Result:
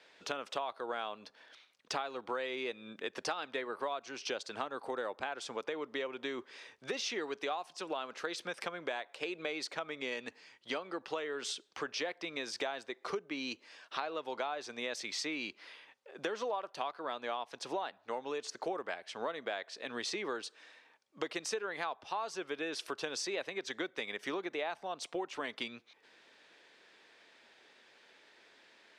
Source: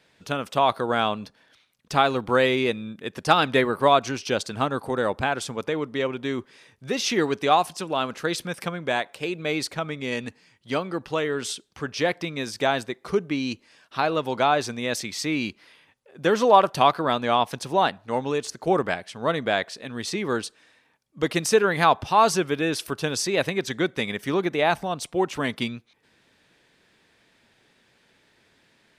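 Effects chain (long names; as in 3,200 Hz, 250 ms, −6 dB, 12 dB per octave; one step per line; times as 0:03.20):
three-way crossover with the lows and the highs turned down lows −22 dB, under 310 Hz, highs −18 dB, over 7,600 Hz
downward compressor 8 to 1, threshold −36 dBFS, peak gain reduction 24.5 dB
level +1 dB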